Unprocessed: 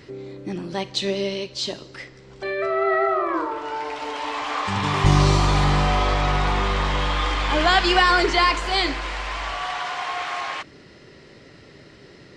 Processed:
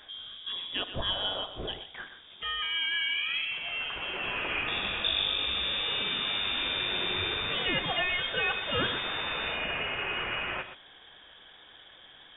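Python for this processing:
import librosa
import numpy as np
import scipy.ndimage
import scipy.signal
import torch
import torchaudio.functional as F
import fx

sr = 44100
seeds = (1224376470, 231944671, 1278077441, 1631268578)

p1 = fx.freq_invert(x, sr, carrier_hz=3600)
p2 = fx.high_shelf(p1, sr, hz=2300.0, db=-11.0)
p3 = p2 + fx.echo_single(p2, sr, ms=122, db=-11.0, dry=0)
p4 = fx.rider(p3, sr, range_db=4, speed_s=0.5)
y = p4 * librosa.db_to_amplitude(-4.0)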